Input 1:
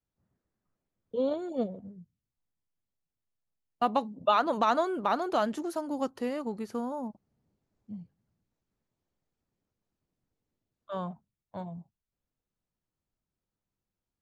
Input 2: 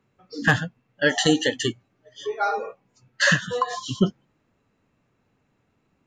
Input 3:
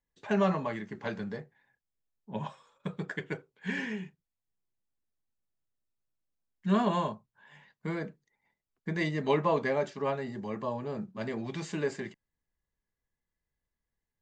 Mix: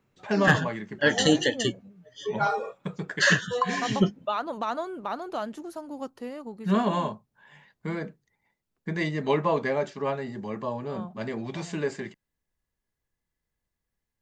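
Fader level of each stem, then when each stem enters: -4.5, -2.0, +2.5 dB; 0.00, 0.00, 0.00 s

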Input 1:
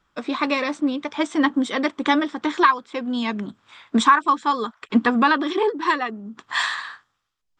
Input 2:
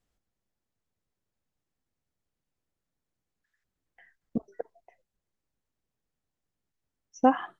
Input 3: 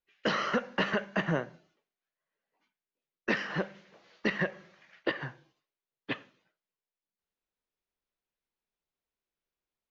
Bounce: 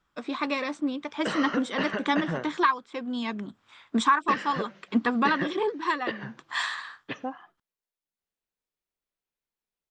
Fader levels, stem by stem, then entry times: -6.5, -13.5, -1.5 dB; 0.00, 0.00, 1.00 s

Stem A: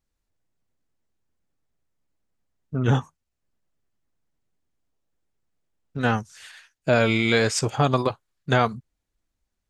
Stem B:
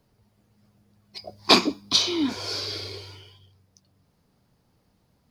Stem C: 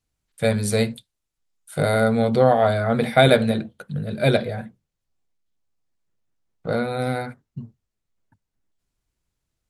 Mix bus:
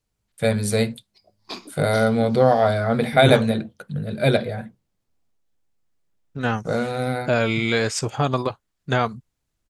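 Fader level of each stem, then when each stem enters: -1.0, -18.5, 0.0 dB; 0.40, 0.00, 0.00 s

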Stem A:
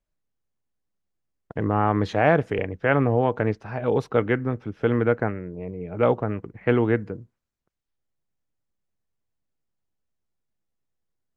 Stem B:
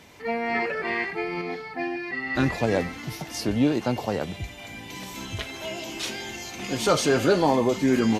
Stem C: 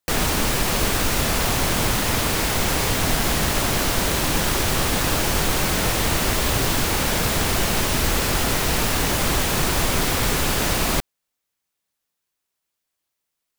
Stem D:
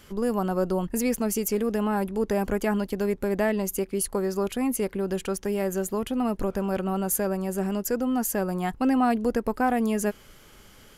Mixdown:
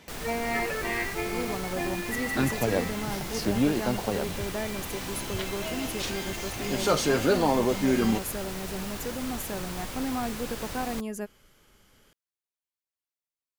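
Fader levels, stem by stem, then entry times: off, -3.0 dB, -16.5 dB, -9.0 dB; off, 0.00 s, 0.00 s, 1.15 s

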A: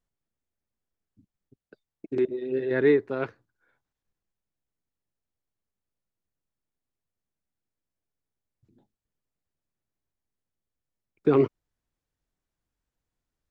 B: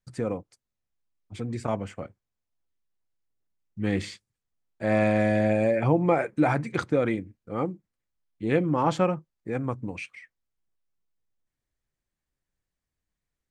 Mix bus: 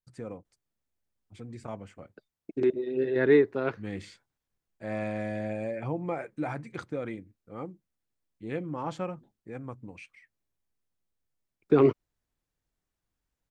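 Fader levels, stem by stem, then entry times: 0.0, -10.5 dB; 0.45, 0.00 s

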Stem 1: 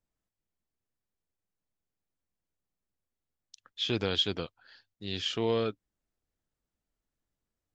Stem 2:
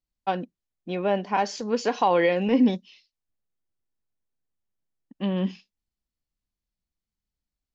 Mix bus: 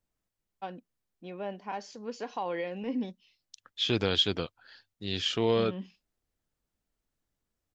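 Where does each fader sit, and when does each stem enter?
+2.5, -13.0 dB; 0.00, 0.35 s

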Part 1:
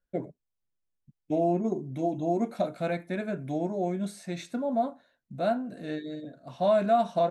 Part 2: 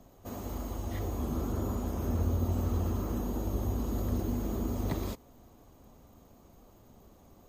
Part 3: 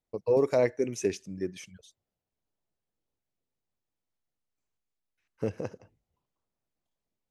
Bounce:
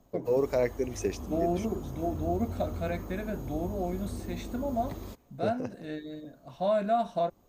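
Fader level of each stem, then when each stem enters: -3.5, -6.5, -2.5 dB; 0.00, 0.00, 0.00 s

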